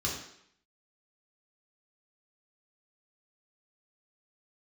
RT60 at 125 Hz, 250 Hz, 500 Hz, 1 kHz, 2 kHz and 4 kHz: 0.55 s, 0.70 s, 0.70 s, 0.70 s, 0.75 s, 0.70 s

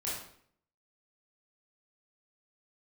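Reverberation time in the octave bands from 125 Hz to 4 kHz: 0.70 s, 0.70 s, 0.65 s, 0.55 s, 0.55 s, 0.50 s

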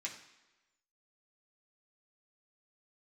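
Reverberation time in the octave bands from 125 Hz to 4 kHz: 0.85 s, 1.0 s, 1.1 s, 1.1 s, 1.1 s, 1.0 s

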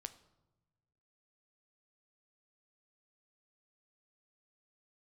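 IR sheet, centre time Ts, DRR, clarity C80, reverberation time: 5 ms, 10.5 dB, 18.0 dB, no single decay rate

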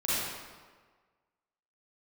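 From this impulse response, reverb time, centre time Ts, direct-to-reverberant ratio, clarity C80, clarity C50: 1.5 s, 124 ms, -10.5 dB, -1.5 dB, -6.0 dB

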